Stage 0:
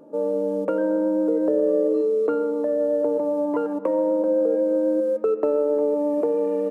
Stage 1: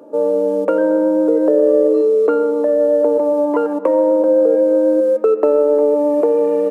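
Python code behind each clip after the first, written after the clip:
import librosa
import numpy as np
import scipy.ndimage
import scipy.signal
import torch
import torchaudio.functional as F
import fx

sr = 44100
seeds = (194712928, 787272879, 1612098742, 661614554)

y = scipy.signal.sosfilt(scipy.signal.butter(2, 290.0, 'highpass', fs=sr, output='sos'), x)
y = y * librosa.db_to_amplitude(8.5)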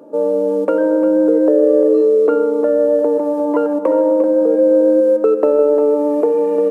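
y = fx.low_shelf(x, sr, hz=150.0, db=9.0)
y = y + 10.0 ** (-10.5 / 20.0) * np.pad(y, (int(350 * sr / 1000.0), 0))[:len(y)]
y = y * librosa.db_to_amplitude(-1.0)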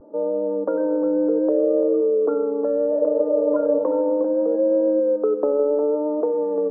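y = fx.vibrato(x, sr, rate_hz=0.69, depth_cents=46.0)
y = scipy.signal.sosfilt(scipy.signal.butter(4, 1300.0, 'lowpass', fs=sr, output='sos'), y)
y = fx.spec_repair(y, sr, seeds[0], start_s=2.96, length_s=0.85, low_hz=330.0, high_hz=990.0, source='before')
y = y * librosa.db_to_amplitude(-7.0)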